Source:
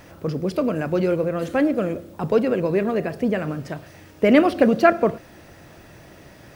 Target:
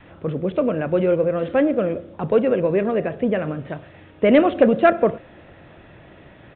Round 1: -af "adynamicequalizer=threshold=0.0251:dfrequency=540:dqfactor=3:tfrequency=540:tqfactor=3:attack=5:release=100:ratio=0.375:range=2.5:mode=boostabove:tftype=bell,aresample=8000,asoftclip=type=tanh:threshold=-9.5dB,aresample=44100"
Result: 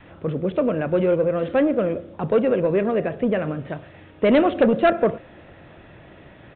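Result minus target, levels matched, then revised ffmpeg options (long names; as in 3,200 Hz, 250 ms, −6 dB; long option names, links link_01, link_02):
soft clipping: distortion +9 dB
-af "adynamicequalizer=threshold=0.0251:dfrequency=540:dqfactor=3:tfrequency=540:tqfactor=3:attack=5:release=100:ratio=0.375:range=2.5:mode=boostabove:tftype=bell,aresample=8000,asoftclip=type=tanh:threshold=-2.5dB,aresample=44100"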